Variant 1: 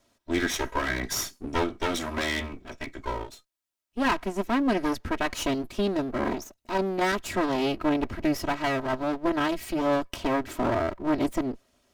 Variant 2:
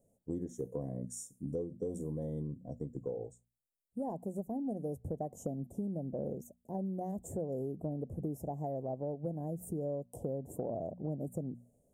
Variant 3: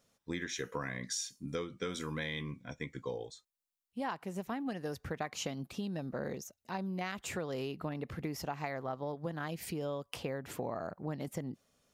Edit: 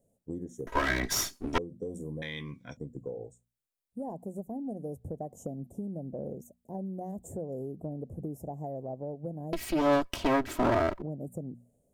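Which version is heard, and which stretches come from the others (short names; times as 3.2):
2
0.67–1.58 from 1
2.22–2.77 from 3
9.53–11.02 from 1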